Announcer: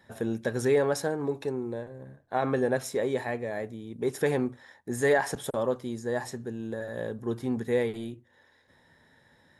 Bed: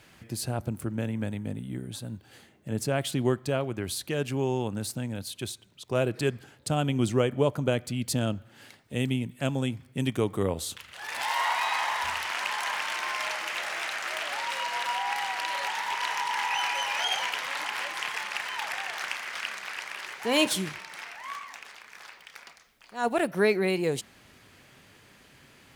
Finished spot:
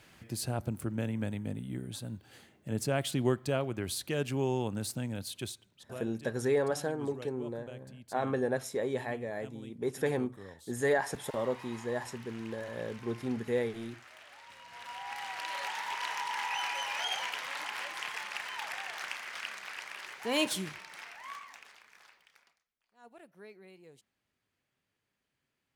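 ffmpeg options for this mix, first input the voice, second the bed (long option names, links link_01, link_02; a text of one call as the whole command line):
ffmpeg -i stem1.wav -i stem2.wav -filter_complex "[0:a]adelay=5800,volume=-4.5dB[link_01];[1:a]volume=12.5dB,afade=type=out:start_time=5.36:duration=0.68:silence=0.11885,afade=type=in:start_time=14.66:duration=0.94:silence=0.16788,afade=type=out:start_time=21.26:duration=1.39:silence=0.0749894[link_02];[link_01][link_02]amix=inputs=2:normalize=0" out.wav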